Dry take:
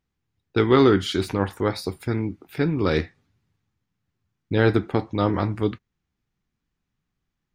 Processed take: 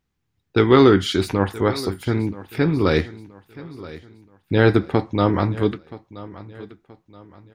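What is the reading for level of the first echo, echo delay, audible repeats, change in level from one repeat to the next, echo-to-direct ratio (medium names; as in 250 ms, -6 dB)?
-18.0 dB, 976 ms, 2, -8.5 dB, -17.5 dB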